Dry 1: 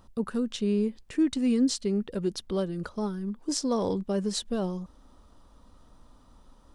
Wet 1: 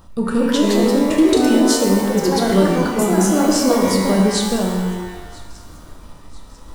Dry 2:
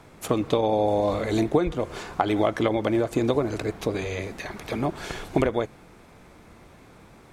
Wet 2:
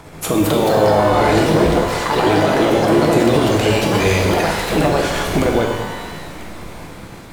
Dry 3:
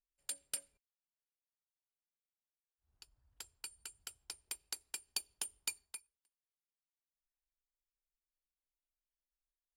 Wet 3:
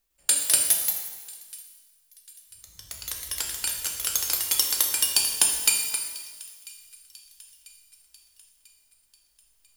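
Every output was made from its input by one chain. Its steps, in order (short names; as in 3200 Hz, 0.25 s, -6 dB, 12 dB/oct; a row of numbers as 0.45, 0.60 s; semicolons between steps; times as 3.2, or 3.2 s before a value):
random-step tremolo; in parallel at +2 dB: level quantiser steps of 11 dB; on the sum: high shelf 10000 Hz +5 dB; thin delay 0.993 s, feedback 50%, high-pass 2000 Hz, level -23 dB; echoes that change speed 0.252 s, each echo +3 st, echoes 2; limiter -17 dBFS; shimmer reverb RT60 1.2 s, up +12 st, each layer -8 dB, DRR 1.5 dB; normalise peaks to -2 dBFS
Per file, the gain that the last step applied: +9.0, +9.5, +14.5 dB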